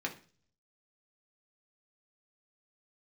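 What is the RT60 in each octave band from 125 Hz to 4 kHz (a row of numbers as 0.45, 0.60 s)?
0.80, 0.55, 0.45, 0.40, 0.40, 0.50 s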